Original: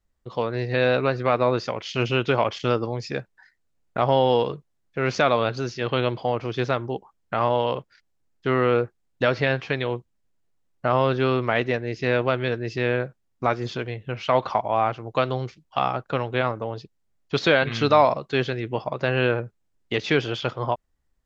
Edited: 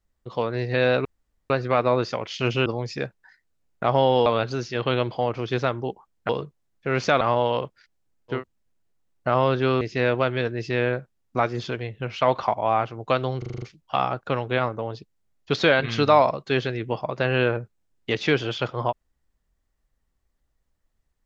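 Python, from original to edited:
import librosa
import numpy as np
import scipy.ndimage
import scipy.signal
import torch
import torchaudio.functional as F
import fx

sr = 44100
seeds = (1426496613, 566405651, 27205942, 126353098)

y = fx.edit(x, sr, fx.insert_room_tone(at_s=1.05, length_s=0.45),
    fx.cut(start_s=2.21, length_s=0.59),
    fx.move(start_s=4.4, length_s=0.92, to_s=7.35),
    fx.cut(start_s=8.5, length_s=1.44, crossfade_s=0.16),
    fx.cut(start_s=11.39, length_s=0.49),
    fx.stutter(start_s=15.45, slice_s=0.04, count=7), tone=tone)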